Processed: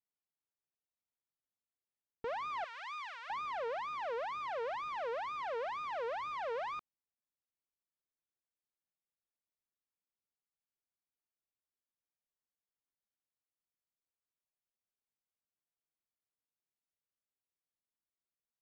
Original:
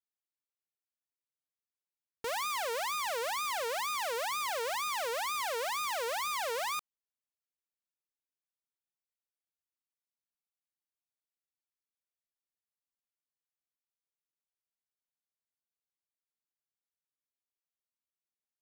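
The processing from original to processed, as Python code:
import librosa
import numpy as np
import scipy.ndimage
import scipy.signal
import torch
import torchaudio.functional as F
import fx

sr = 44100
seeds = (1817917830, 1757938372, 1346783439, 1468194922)

y = fx.bessel_highpass(x, sr, hz=1600.0, order=6, at=(2.64, 3.3))
y = fx.rider(y, sr, range_db=10, speed_s=0.5)
y = fx.spacing_loss(y, sr, db_at_10k=42)
y = F.gain(torch.from_numpy(y), 1.0).numpy()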